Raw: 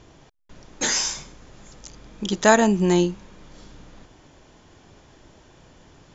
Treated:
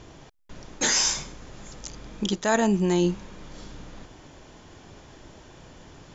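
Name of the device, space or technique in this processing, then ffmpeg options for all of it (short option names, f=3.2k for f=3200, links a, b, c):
compression on the reversed sound: -af "areverse,acompressor=threshold=-22dB:ratio=8,areverse,volume=3.5dB"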